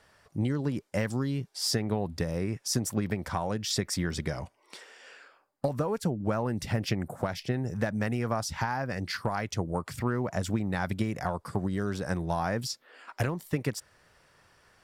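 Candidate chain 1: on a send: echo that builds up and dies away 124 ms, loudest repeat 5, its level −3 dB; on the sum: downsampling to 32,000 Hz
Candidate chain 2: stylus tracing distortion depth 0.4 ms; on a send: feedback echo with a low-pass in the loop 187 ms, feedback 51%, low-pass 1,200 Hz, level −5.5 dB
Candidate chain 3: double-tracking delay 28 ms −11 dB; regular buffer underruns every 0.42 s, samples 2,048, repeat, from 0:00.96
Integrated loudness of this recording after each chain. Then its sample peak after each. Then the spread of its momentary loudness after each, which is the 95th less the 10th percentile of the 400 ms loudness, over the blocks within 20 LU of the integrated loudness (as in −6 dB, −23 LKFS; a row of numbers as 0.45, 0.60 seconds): −24.5, −30.5, −31.0 LKFS; −9.5, −12.5, −14.5 dBFS; 5, 8, 8 LU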